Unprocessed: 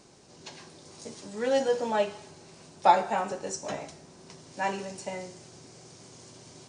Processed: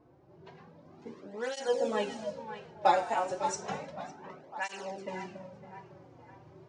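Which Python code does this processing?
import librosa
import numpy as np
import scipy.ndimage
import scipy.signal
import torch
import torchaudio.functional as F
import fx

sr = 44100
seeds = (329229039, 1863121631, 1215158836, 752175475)

y = fx.echo_split(x, sr, split_hz=760.0, low_ms=277, high_ms=556, feedback_pct=52, wet_db=-10.0)
y = fx.env_lowpass(y, sr, base_hz=1000.0, full_db=-25.5)
y = fx.flanger_cancel(y, sr, hz=0.32, depth_ms=5.2)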